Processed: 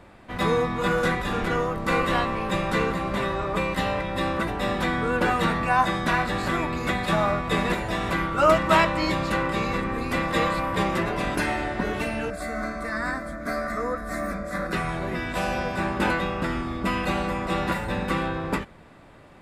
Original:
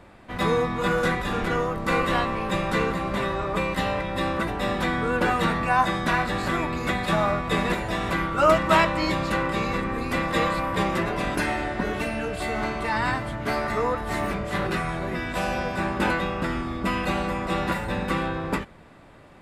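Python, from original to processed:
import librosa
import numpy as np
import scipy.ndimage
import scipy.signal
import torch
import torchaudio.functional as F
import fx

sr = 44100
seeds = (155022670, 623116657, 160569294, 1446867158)

y = fx.fixed_phaser(x, sr, hz=590.0, stages=8, at=(12.3, 14.73))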